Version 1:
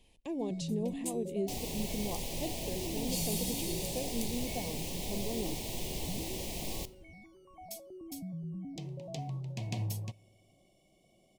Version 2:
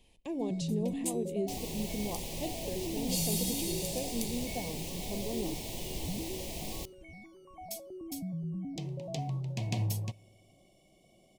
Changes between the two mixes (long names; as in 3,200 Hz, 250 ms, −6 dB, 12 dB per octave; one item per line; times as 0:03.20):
speech: send +7.0 dB
first sound +3.5 dB
second sound: send −10.0 dB